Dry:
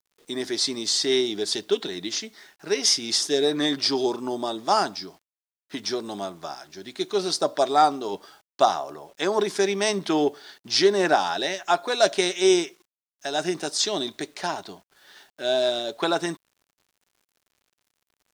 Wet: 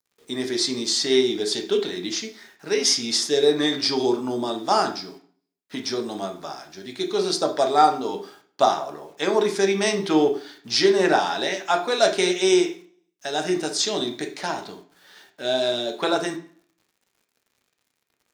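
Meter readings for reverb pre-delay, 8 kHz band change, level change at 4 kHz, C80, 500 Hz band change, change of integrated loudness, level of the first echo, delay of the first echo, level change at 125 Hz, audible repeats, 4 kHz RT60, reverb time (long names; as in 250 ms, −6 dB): 3 ms, +0.5 dB, +1.0 dB, 15.5 dB, +2.0 dB, +1.5 dB, no echo audible, no echo audible, +2.5 dB, no echo audible, 0.40 s, 0.45 s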